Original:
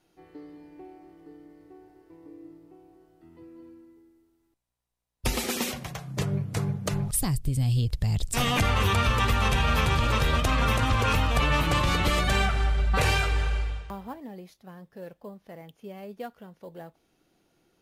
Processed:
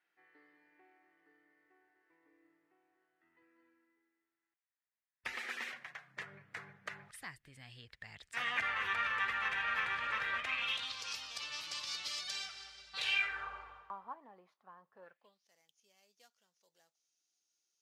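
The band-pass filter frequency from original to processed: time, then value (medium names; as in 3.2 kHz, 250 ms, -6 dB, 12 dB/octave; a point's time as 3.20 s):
band-pass filter, Q 3.7
10.37 s 1.8 kHz
11.02 s 5.1 kHz
12.90 s 5.1 kHz
13.48 s 1.1 kHz
15.03 s 1.1 kHz
15.45 s 6.1 kHz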